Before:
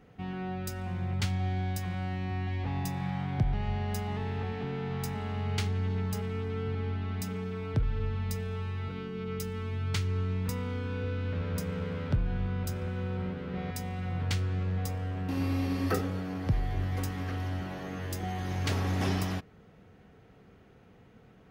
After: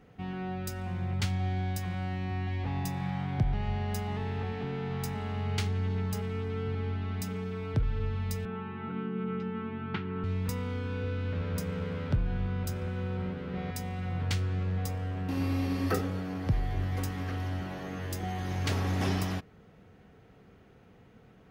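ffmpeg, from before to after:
-filter_complex "[0:a]asettb=1/sr,asplit=3[s0][s1][s2];[s0]atrim=end=8.454[s3];[s1]atrim=start=8.45:end=10.24,asetpts=PTS-STARTPTS,afade=t=in:d=0.004:c=qsin,afade=t=out:st=1.786:d=0.004:c=qsin,highpass=f=130:w=0.5412,highpass=f=130:w=1.3066,equalizer=f=210:t=q:w=4:g=9,equalizer=f=350:t=q:w=4:g=8,equalizer=f=550:t=q:w=4:g=-9,equalizer=f=830:t=q:w=4:g=6,equalizer=f=1400:t=q:w=4:g=5,equalizer=f=2200:t=q:w=4:g=-3,lowpass=f=2800:w=0.5412,lowpass=f=2800:w=1.3066[s4];[s2]atrim=start=10.236[s5];[s3][s4]acrossfade=d=0.004:c1=hsin:c2=qsin[s6];[s6][s5]acrossfade=d=0.004:c1=qsin:c2=hsin"

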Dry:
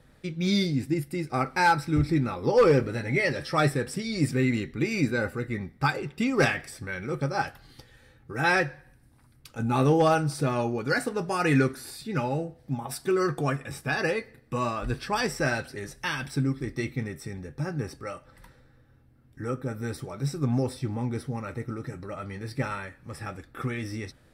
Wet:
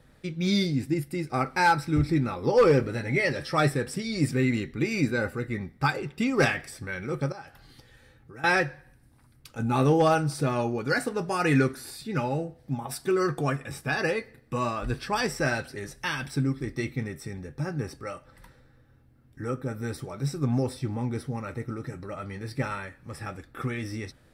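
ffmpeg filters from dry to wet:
-filter_complex "[0:a]asettb=1/sr,asplit=3[s0][s1][s2];[s0]atrim=end=7.324[s3];[s1]atrim=start=7.32:end=8.44,asetpts=PTS-STARTPTS,afade=t=in:d=0.004:c=qsin,afade=t=out:st=1.116:d=0.004:c=qsin,acompressor=threshold=0.00447:ratio=2.5:attack=3.2:release=140:knee=1:detection=peak[s4];[s2]atrim=start=8.436[s5];[s3][s4]acrossfade=d=0.004:c1=hsin:c2=qsin[s6];[s6][s5]acrossfade=d=0.004:c1=qsin:c2=hsin"

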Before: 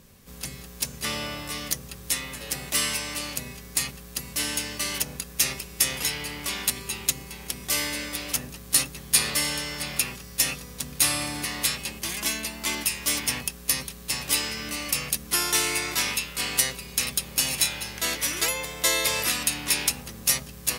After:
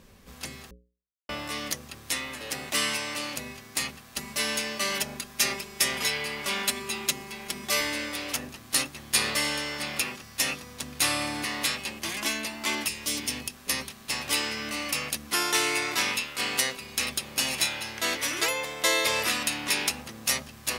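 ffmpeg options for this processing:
-filter_complex "[0:a]asettb=1/sr,asplit=3[s0][s1][s2];[s0]atrim=end=4.164[s3];[s1]atrim=start=4.16:end=7.81,asetpts=PTS-STARTPTS,afade=t=in:d=0.004:c=qsin,afade=t=out:st=3.646:d=0.004:c=qsin,aecho=1:1:5:0.65,atrim=end_sample=160965[s4];[s2]atrim=start=7.806[s5];[s3][s4]acrossfade=d=0.004:c1=hsin:c2=qsin[s6];[s6][s5]acrossfade=d=0.004:c1=qsin:c2=hsin,asettb=1/sr,asplit=3[s7][s8][s9];[s7]atrim=end=12.884[s10];[s8]atrim=start=12.88:end=13.67,asetpts=PTS-STARTPTS,afade=t=in:d=0.004:c=qsin,afade=t=out:st=0.786:d=0.004:c=qsin,acrossover=split=470|3000[s11][s12][s13];[s12]acompressor=threshold=0.00501:ratio=3:attack=3.2:release=140:knee=2.83:detection=peak[s14];[s11][s14][s13]amix=inputs=3:normalize=0[s15];[s9]atrim=start=13.666[s16];[s10][s15]acrossfade=d=0.004:c1=hsin:c2=qsin[s17];[s17][s16]acrossfade=d=0.004:c1=qsin:c2=hsin,asplit=3[s18][s19][s20];[s18]atrim=end=0.71,asetpts=PTS-STARTPTS,afade=t=out:st=0.706:d=0.004:c=hsin[s21];[s19]atrim=start=0.71:end=1.29,asetpts=PTS-STARTPTS,volume=0[s22];[s20]atrim=start=1.29,asetpts=PTS-STARTPTS,afade=t=in:d=0.004:c=hsin[s23];[s21][s22][s23]concat=n=3:v=0:a=1,lowpass=f=3600:p=1,equalizer=f=130:w=2.4:g=-9,bandreject=f=60:t=h:w=6,bandreject=f=120:t=h:w=6,bandreject=f=180:t=h:w=6,bandreject=f=240:t=h:w=6,bandreject=f=300:t=h:w=6,bandreject=f=360:t=h:w=6,bandreject=f=420:t=h:w=6,bandreject=f=480:t=h:w=6,bandreject=f=540:t=h:w=6,volume=1.33"

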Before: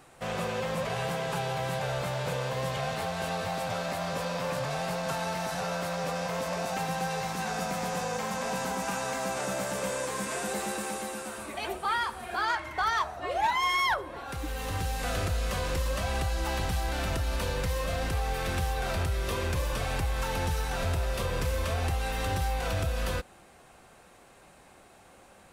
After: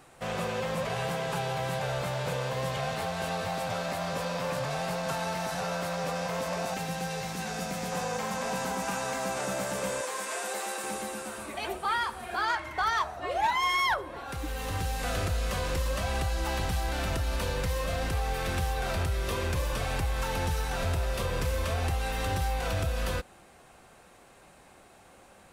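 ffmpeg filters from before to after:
-filter_complex "[0:a]asettb=1/sr,asplit=3[s0][s1][s2];[s0]atrim=end=6.744[s3];[s1]atrim=start=6.74:end=7.92,asetpts=PTS-STARTPTS,afade=t=in:d=0.004:c=qsin,afade=t=out:st=1.176:d=0.004:c=qsin,equalizer=f=1000:t=o:w=1.3:g=-6[s4];[s2]atrim=start=7.916[s5];[s3][s4]acrossfade=d=0.004:c1=hsin:c2=qsin[s6];[s6][s5]acrossfade=d=0.004:c1=qsin:c2=hsin,asettb=1/sr,asplit=3[s7][s8][s9];[s7]atrim=end=10.014[s10];[s8]atrim=start=10.01:end=10.84,asetpts=PTS-STARTPTS,afade=t=in:d=0.004:c=qsin,afade=t=out:st=0.826:d=0.004:c=qsin,highpass=460[s11];[s9]atrim=start=10.836[s12];[s10][s11]acrossfade=d=0.004:c1=hsin:c2=qsin[s13];[s13][s12]acrossfade=d=0.004:c1=qsin:c2=hsin"

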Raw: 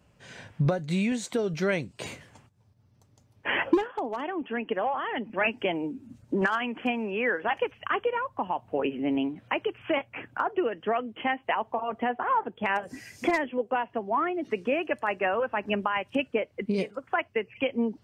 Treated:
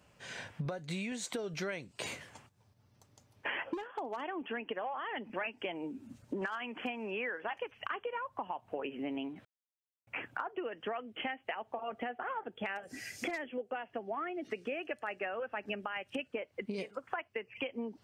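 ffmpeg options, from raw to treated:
-filter_complex "[0:a]asettb=1/sr,asplit=3[s0][s1][s2];[s0]atrim=end=11.104[s3];[s1]atrim=start=11.1:end=16.3,asetpts=PTS-STARTPTS,afade=t=in:d=0.004:c=qsin,afade=t=out:st=5.196:d=0.004:c=qsin,equalizer=f=1000:t=o:w=0.27:g=-11.5[s4];[s2]atrim=start=16.296[s5];[s3][s4]acrossfade=d=0.004:c1=hsin:c2=qsin[s6];[s6][s5]acrossfade=d=0.004:c1=qsin:c2=hsin,asplit=3[s7][s8][s9];[s7]atrim=end=9.45,asetpts=PTS-STARTPTS,afade=t=out:st=9.446:d=0.004:c=hsin[s10];[s8]atrim=start=9.45:end=10.07,asetpts=PTS-STARTPTS,volume=0[s11];[s9]atrim=start=10.07,asetpts=PTS-STARTPTS,afade=t=in:d=0.004:c=hsin[s12];[s10][s11][s12]concat=n=3:v=0:a=1,lowshelf=f=370:g=-8.5,acompressor=threshold=0.0126:ratio=6,volume=1.33"

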